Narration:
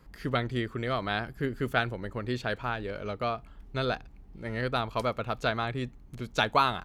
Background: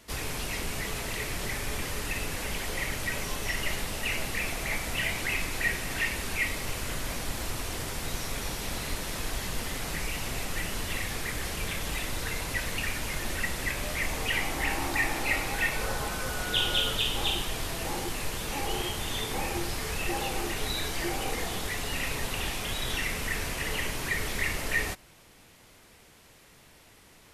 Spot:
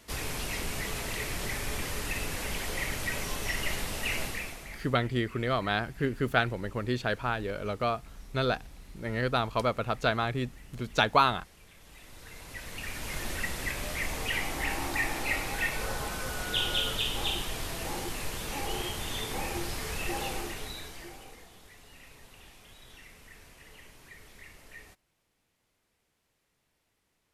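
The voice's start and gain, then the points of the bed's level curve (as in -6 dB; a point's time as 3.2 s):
4.60 s, +1.5 dB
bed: 4.24 s -1 dB
5.03 s -23 dB
11.72 s -23 dB
13.17 s -2.5 dB
20.3 s -2.5 dB
21.5 s -21 dB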